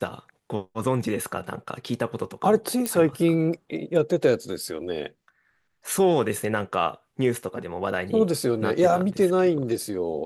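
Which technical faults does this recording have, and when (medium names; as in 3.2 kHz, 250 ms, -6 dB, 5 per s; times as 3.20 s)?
2.86 s: pop -12 dBFS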